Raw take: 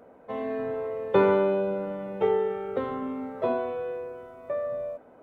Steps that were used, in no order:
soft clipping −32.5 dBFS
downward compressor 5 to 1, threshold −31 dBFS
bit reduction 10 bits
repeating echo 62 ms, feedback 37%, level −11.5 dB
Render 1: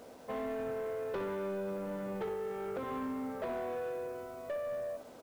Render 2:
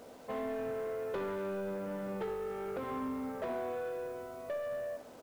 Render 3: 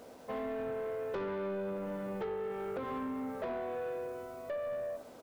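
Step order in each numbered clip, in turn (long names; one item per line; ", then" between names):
downward compressor, then repeating echo, then soft clipping, then bit reduction
downward compressor, then soft clipping, then bit reduction, then repeating echo
repeating echo, then bit reduction, then downward compressor, then soft clipping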